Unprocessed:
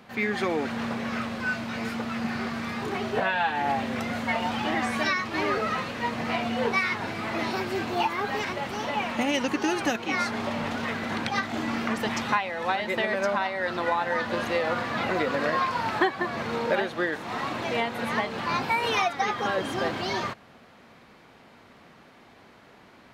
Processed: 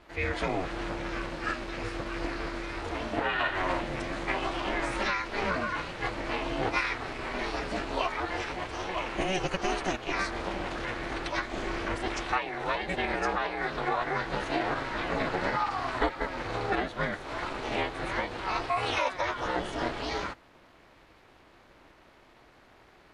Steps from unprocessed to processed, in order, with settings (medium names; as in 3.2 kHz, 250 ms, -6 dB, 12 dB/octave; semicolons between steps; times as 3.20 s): formant-preserving pitch shift -7.5 st; ring modulator 190 Hz